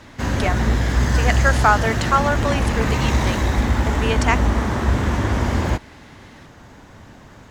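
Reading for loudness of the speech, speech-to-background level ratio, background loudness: -22.5 LUFS, -2.0 dB, -20.5 LUFS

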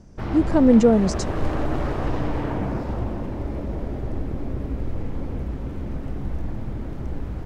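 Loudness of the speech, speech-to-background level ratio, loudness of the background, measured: -18.0 LUFS, 11.5 dB, -29.5 LUFS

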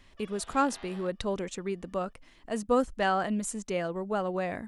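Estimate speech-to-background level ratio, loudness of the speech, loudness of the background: 20.0 dB, -31.0 LUFS, -51.0 LUFS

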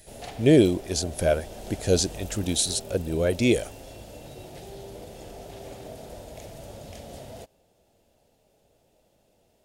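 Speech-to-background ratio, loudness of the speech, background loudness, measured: 18.0 dB, -24.0 LUFS, -42.0 LUFS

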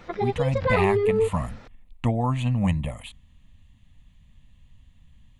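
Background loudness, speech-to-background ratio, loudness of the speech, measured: -24.5 LUFS, -2.5 dB, -27.0 LUFS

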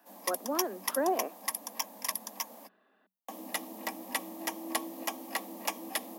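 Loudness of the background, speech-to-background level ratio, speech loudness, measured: -36.5 LUFS, 2.5 dB, -34.0 LUFS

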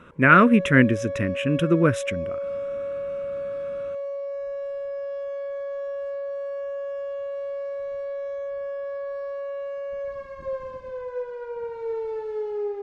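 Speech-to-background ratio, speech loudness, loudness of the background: 12.5 dB, -19.0 LUFS, -31.5 LUFS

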